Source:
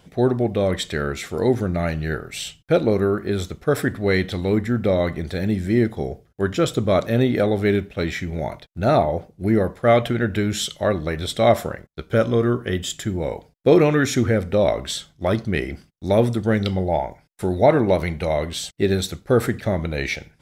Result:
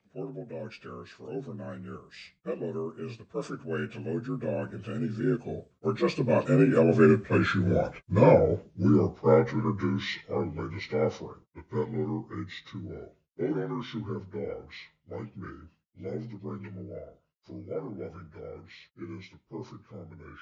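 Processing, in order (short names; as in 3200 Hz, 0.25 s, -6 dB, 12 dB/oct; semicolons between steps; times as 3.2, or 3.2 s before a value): inharmonic rescaling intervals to 83%; Doppler pass-by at 7.68, 30 m/s, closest 23 m; gain +3 dB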